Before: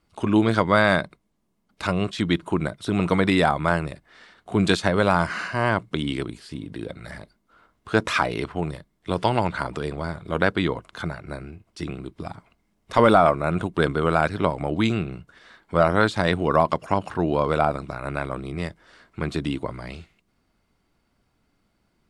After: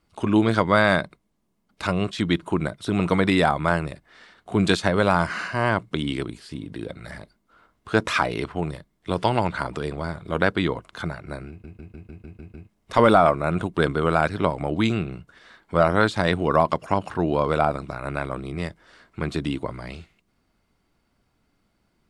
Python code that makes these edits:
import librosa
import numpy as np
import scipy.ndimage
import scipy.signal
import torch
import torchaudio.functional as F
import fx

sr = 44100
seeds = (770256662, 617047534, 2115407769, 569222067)

y = fx.edit(x, sr, fx.stutter_over(start_s=11.49, slice_s=0.15, count=8), tone=tone)